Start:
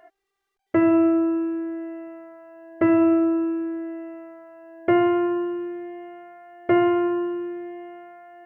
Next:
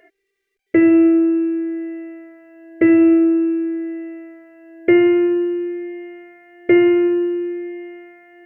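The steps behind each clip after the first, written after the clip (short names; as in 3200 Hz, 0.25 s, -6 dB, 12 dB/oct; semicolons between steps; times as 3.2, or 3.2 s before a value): EQ curve 170 Hz 0 dB, 480 Hz +10 dB, 850 Hz -16 dB, 1400 Hz -4 dB, 2100 Hz +11 dB, 3300 Hz +2 dB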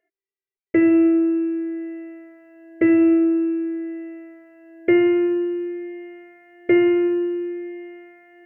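gate with hold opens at -40 dBFS; gain -3.5 dB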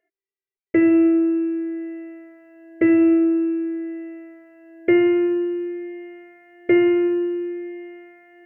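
nothing audible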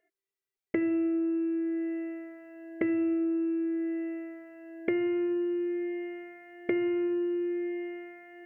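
compressor 4:1, threshold -29 dBFS, peak gain reduction 14 dB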